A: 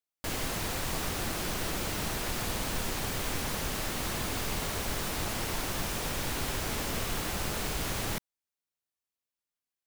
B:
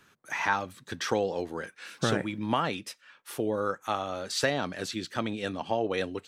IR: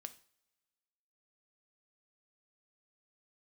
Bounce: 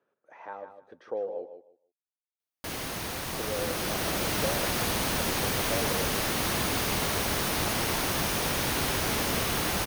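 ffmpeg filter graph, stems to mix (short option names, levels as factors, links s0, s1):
-filter_complex "[0:a]highpass=f=91:p=1,dynaudnorm=f=970:g=3:m=2.24,adelay=2400,volume=0.891[s0];[1:a]bandpass=f=540:t=q:w=3.2:csg=0,volume=0.794,asplit=3[s1][s2][s3];[s1]atrim=end=1.46,asetpts=PTS-STARTPTS,afade=t=out:st=1.456:d=0.004:c=hsin[s4];[s2]atrim=start=1.46:end=3.21,asetpts=PTS-STARTPTS,volume=0[s5];[s3]atrim=start=3.21,asetpts=PTS-STARTPTS,afade=t=in:d=0.004:c=hsin[s6];[s4][s5][s6]concat=n=3:v=0:a=1,asplit=2[s7][s8];[s8]volume=0.335,aecho=0:1:154|308|462:1|0.2|0.04[s9];[s0][s7][s9]amix=inputs=3:normalize=0,bandreject=f=7500:w=7.7"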